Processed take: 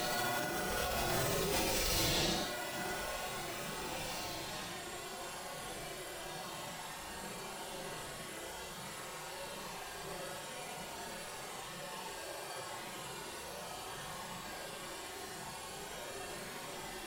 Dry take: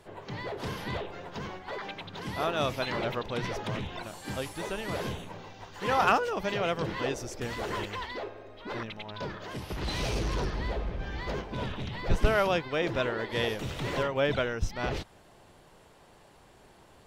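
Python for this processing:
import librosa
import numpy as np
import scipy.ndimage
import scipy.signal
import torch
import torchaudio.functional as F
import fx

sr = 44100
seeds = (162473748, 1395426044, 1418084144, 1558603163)

p1 = (np.mod(10.0 ** (29.0 / 20.0) * x + 1.0, 2.0) - 1.0) / 10.0 ** (29.0 / 20.0)
p2 = x + (p1 * 10.0 ** (-7.0 / 20.0))
p3 = fx.vibrato(p2, sr, rate_hz=0.45, depth_cents=20.0)
p4 = p3 + fx.echo_feedback(p3, sr, ms=231, feedback_pct=17, wet_db=-3.5, dry=0)
p5 = fx.paulstretch(p4, sr, seeds[0], factor=10.0, window_s=0.05, from_s=15.02)
p6 = fx.tilt_eq(p5, sr, slope=2.0)
p7 = p6 + 0.38 * np.pad(p6, (int(5.5 * sr / 1000.0), 0))[:len(p6)]
p8 = fx.dynamic_eq(p7, sr, hz=2300.0, q=0.9, threshold_db=-49.0, ratio=4.0, max_db=-5)
p9 = fx.over_compress(p8, sr, threshold_db=-39.0, ratio=-1.0)
y = p9 * 10.0 ** (5.0 / 20.0)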